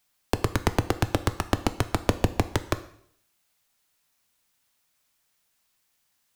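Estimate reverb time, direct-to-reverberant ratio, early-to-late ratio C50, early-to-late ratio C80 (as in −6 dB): 0.65 s, 11.5 dB, 15.5 dB, 18.0 dB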